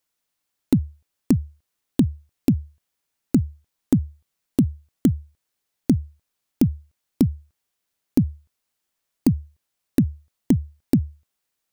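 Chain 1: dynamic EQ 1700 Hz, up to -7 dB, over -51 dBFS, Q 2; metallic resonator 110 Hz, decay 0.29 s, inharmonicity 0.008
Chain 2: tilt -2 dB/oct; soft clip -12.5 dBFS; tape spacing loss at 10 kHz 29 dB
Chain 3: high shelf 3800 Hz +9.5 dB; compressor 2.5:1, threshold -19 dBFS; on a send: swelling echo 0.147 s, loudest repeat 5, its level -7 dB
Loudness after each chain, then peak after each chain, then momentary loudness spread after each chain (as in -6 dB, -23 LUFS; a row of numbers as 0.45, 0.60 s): -34.5, -24.5, -25.5 LUFS; -18.0, -13.0, -2.5 dBFS; 10, 10, 4 LU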